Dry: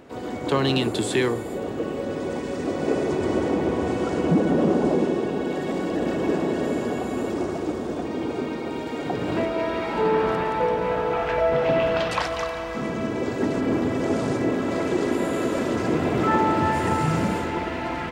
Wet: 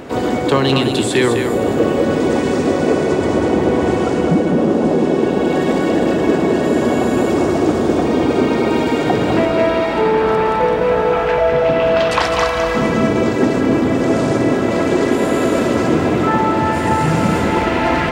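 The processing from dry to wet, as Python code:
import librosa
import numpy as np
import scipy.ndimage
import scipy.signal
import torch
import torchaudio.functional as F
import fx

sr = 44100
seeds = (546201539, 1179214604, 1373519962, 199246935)

y = fx.rider(x, sr, range_db=10, speed_s=0.5)
y = y + 10.0 ** (-6.5 / 20.0) * np.pad(y, (int(207 * sr / 1000.0), 0))[:len(y)]
y = y * 10.0 ** (8.0 / 20.0)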